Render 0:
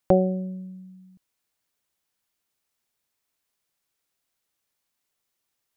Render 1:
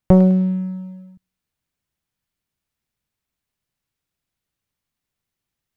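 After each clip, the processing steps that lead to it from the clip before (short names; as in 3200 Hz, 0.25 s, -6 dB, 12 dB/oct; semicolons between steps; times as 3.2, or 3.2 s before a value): tone controls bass +14 dB, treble -5 dB; thin delay 0.103 s, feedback 35%, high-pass 1500 Hz, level -3 dB; sample leveller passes 1; gain -1 dB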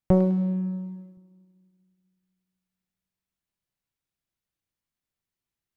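on a send at -11 dB: elliptic high-pass 190 Hz + reverb RT60 1.7 s, pre-delay 3 ms; on the sum: gain -7.5 dB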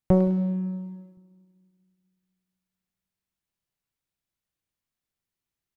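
echo 0.17 s -21.5 dB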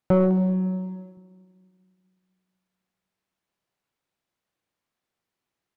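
bell 1700 Hz -4 dB 2.6 oct; overdrive pedal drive 22 dB, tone 1200 Hz, clips at -9.5 dBFS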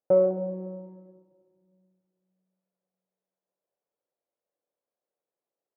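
band-pass 530 Hz, Q 3.3; shoebox room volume 3200 m³, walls mixed, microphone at 0.35 m; gain +3.5 dB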